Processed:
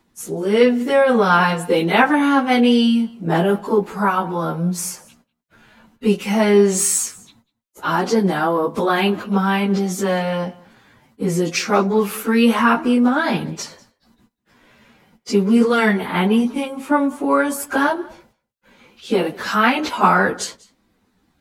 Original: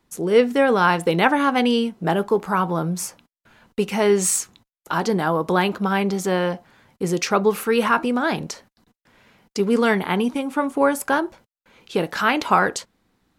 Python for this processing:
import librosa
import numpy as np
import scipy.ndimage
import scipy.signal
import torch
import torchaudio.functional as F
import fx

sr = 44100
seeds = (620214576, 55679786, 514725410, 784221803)

y = fx.peak_eq(x, sr, hz=230.0, db=5.0, octaves=0.33)
y = fx.stretch_vocoder_free(y, sr, factor=1.6)
y = y + 10.0 ** (-23.5 / 20.0) * np.pad(y, (int(194 * sr / 1000.0), 0))[:len(y)]
y = F.gain(torch.from_numpy(y), 5.0).numpy()